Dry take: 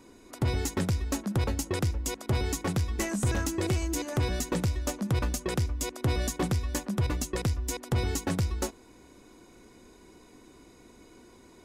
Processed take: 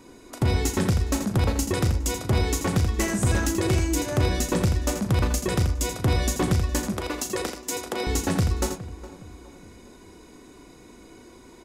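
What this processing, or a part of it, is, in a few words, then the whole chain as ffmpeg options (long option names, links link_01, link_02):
slapback doubling: -filter_complex "[0:a]asplit=3[link_01][link_02][link_03];[link_02]adelay=37,volume=-9dB[link_04];[link_03]adelay=83,volume=-8dB[link_05];[link_01][link_04][link_05]amix=inputs=3:normalize=0,asettb=1/sr,asplit=3[link_06][link_07][link_08];[link_06]atrim=end=6.924[link_09];[link_07]atrim=start=6.92:end=8.07,asetpts=PTS-STARTPTS,afade=type=in:duration=0.004:curve=qsin,afade=type=out:start_time=1.146:duration=0.004:curve=qsin,highpass=frequency=280:width=0.5412,highpass=frequency=280:width=1.3066[link_10];[link_08]atrim=start=8.066[link_11];[link_09][link_10]acrossfade=duration=0.004:curve1=hsin:curve2=qsin[link_12];[link_12][link_11]acrossfade=duration=0.004:curve1=qsin:curve2=hsin,asplit=2[link_13][link_14];[link_14]adelay=413,lowpass=frequency=1700:poles=1,volume=-14.5dB,asplit=2[link_15][link_16];[link_16]adelay=413,lowpass=frequency=1700:poles=1,volume=0.42,asplit=2[link_17][link_18];[link_18]adelay=413,lowpass=frequency=1700:poles=1,volume=0.42,asplit=2[link_19][link_20];[link_20]adelay=413,lowpass=frequency=1700:poles=1,volume=0.42[link_21];[link_13][link_15][link_17][link_19][link_21]amix=inputs=5:normalize=0,volume=4.5dB"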